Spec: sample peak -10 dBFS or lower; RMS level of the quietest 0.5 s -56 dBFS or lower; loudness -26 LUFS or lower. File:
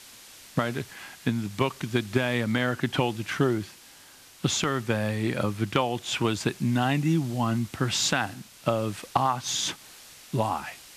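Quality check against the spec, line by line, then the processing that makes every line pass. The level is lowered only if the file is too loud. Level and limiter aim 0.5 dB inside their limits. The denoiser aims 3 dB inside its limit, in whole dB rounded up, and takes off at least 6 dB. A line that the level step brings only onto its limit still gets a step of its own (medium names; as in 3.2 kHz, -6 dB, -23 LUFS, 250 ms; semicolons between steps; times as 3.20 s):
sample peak -6.5 dBFS: fail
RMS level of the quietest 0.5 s -51 dBFS: fail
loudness -27.5 LUFS: pass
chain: noise reduction 8 dB, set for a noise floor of -51 dBFS; peak limiter -10.5 dBFS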